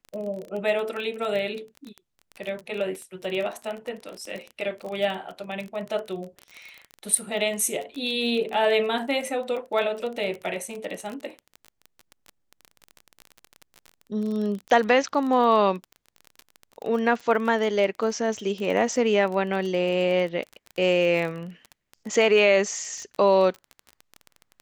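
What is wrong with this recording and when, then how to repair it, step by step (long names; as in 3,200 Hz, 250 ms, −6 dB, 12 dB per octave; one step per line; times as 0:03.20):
surface crackle 26 per second −30 dBFS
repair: click removal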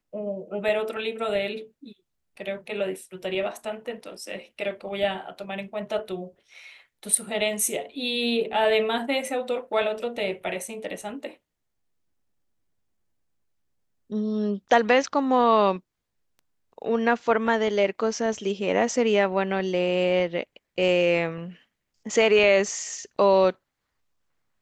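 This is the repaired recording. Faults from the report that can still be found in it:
none of them is left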